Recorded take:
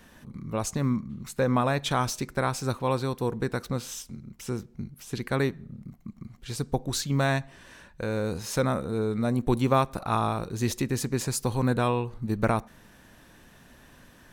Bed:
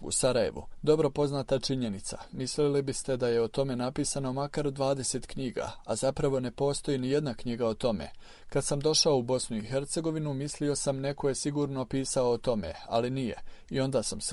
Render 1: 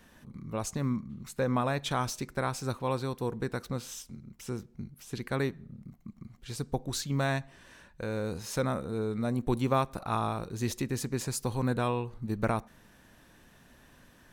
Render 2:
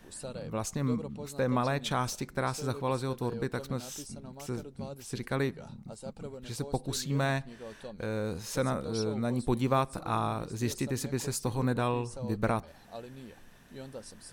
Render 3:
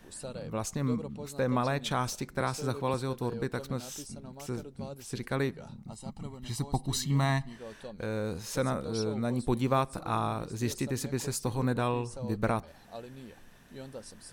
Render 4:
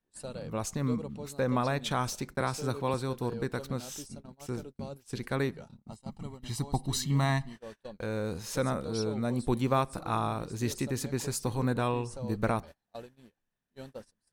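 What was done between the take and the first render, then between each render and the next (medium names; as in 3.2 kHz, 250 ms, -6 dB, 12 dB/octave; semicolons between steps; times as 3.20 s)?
trim -4.5 dB
add bed -15.5 dB
2.40–2.94 s: three bands compressed up and down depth 40%; 5.89–7.57 s: comb 1 ms, depth 72%
gate -43 dBFS, range -31 dB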